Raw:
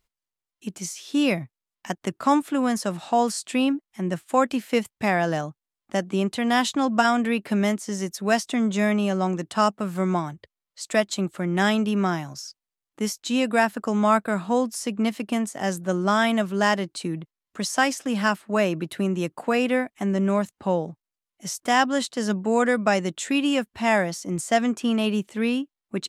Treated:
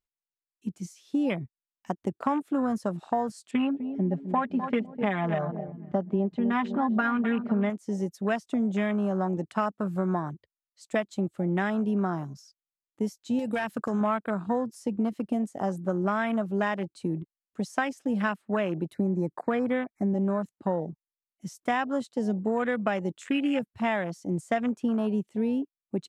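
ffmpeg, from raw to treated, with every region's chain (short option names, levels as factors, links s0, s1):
-filter_complex "[0:a]asettb=1/sr,asplit=3[s0][s1][s2];[s0]atrim=end=3.514[s3];[s1]atrim=start=3.51:end=7.7,asetpts=PTS-STARTPTS,afade=t=in:d=0.004:c=qsin,afade=t=out:st=4.186:d=0.004:c=qsin,lowpass=3000,aecho=1:1:4.9:0.86,atrim=end_sample=184779,asplit=2[s4][s5];[s5]adelay=253,lowpass=f=1800:p=1,volume=0.251,asplit=2[s6][s7];[s7]adelay=253,lowpass=f=1800:p=1,volume=0.55,asplit=2[s8][s9];[s9]adelay=253,lowpass=f=1800:p=1,volume=0.55,asplit=2[s10][s11];[s11]adelay=253,lowpass=f=1800:p=1,volume=0.55,asplit=2[s12][s13];[s13]adelay=253,lowpass=f=1800:p=1,volume=0.55,asplit=2[s14][s15];[s15]adelay=253,lowpass=f=1800:p=1,volume=0.55[s16];[s4][s6][s8][s10][s12][s14][s16]amix=inputs=7:normalize=0,atrim=end_sample=184779[s17];[s2]atrim=start=7.696[s18];[s3][s17]acrossfade=d=0.004:c1=hsin:c2=qsin[s19];[s19][s18]acrossfade=d=0.004:c1=qsin:c2=hsin,asettb=1/sr,asplit=3[s20][s21][s22];[s20]atrim=end=13.394[s23];[s21]atrim=start=13.39:end=14.01,asetpts=PTS-STARTPTS,afade=t=in:d=0.004:c=qsin,afade=t=out:st=0.616:d=0.004:c=qsin,highshelf=f=2000:g=9,acompressor=threshold=0.0891:ratio=6:attack=3.2:release=140:knee=1:detection=peak,aeval=exprs='0.126*(abs(mod(val(0)/0.126+3,4)-2)-1)':c=same[s24];[s22]atrim=start=14.006[s25];[s23][s24]acrossfade=d=0.004:c1=hsin:c2=qsin[s26];[s26][s25]acrossfade=d=0.004:c1=qsin:c2=hsin,asettb=1/sr,asplit=3[s27][s28][s29];[s27]atrim=end=18.944[s30];[s28]atrim=start=18.94:end=20.14,asetpts=PTS-STARTPTS,afade=t=in:d=0.004:c=qsin,afade=t=out:st=1.196:d=0.004:c=qsin,asuperstop=centerf=3100:order=12:qfactor=2.1,bass=f=250:g=3,treble=f=4000:g=-3[s31];[s29]atrim=start=20.136[s32];[s30][s31]acrossfade=d=0.004:c1=hsin:c2=qsin[s33];[s33][s32]acrossfade=d=0.004:c1=qsin:c2=hsin,afwtdn=0.0355,acompressor=threshold=0.0708:ratio=6"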